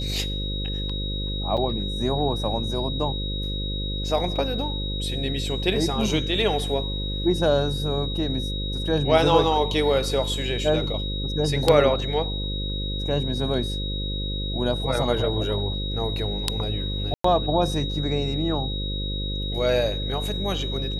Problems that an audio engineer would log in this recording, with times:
buzz 50 Hz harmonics 11 -29 dBFS
tone 3800 Hz -31 dBFS
1.57–1.58 gap 5.4 ms
17.14–17.24 gap 0.104 s

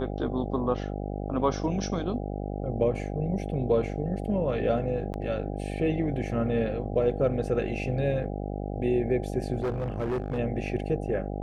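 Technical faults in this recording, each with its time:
buzz 50 Hz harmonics 16 -33 dBFS
5.13–5.14 gap 9.6 ms
9.6–10.39 clipped -25 dBFS

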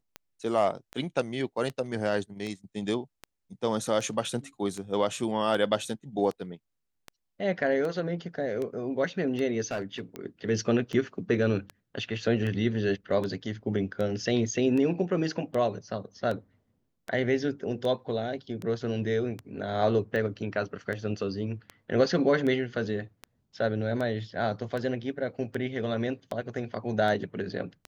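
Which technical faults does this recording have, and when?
tick 78 rpm -22 dBFS
9.71–10 clipped -27 dBFS

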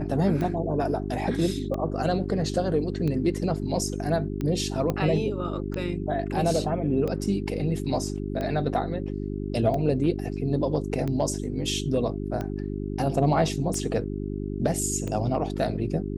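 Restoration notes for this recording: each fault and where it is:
hum 50 Hz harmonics 8 -31 dBFS
tick 45 rpm -19 dBFS
4.9 pop -14 dBFS

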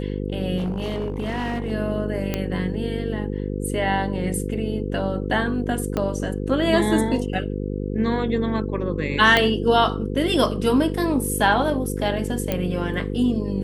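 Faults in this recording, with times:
buzz 50 Hz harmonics 10 -27 dBFS
0.57–1.72 clipped -21.5 dBFS
2.34 pop -9 dBFS
5.97 pop -11 dBFS
9.37 pop -4 dBFS
12.52 pop -9 dBFS

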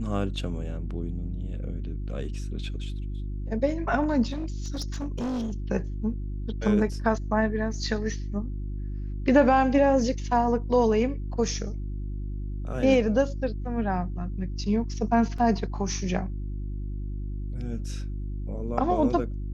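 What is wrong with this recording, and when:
hum 50 Hz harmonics 7 -32 dBFS
4.31–5.54 clipped -26.5 dBFS
15.38 gap 3.8 ms

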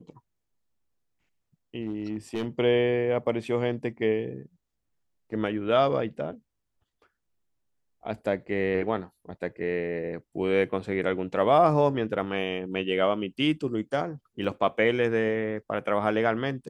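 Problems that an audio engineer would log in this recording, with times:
1.81–2.46 clipped -25 dBFS
14.44 gap 3.8 ms

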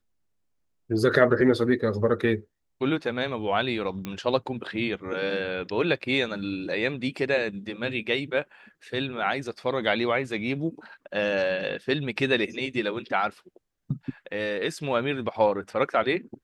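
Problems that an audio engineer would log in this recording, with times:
4.05 pop -18 dBFS

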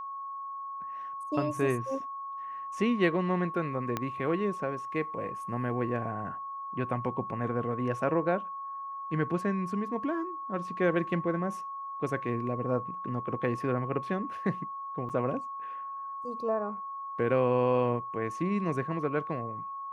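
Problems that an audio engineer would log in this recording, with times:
tone 1100 Hz -36 dBFS
3.97 pop -16 dBFS
15.09–15.1 gap 7.3 ms

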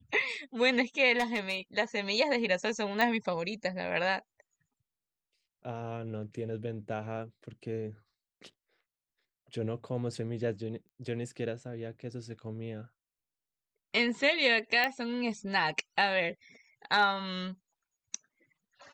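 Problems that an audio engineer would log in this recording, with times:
1.18–1.56 clipped -25 dBFS
3.01 pop -16 dBFS
10.89 pop -45 dBFS
14.84 pop -15 dBFS

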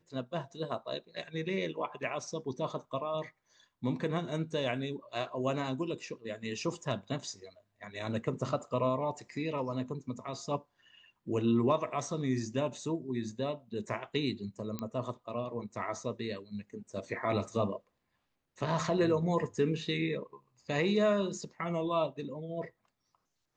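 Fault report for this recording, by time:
14.79 pop -22 dBFS

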